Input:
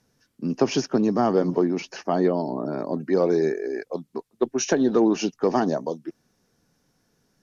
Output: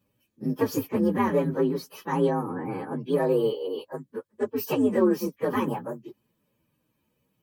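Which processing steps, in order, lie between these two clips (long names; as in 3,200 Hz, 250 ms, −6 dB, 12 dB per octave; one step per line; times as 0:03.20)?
partials spread apart or drawn together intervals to 129%
notch comb filter 700 Hz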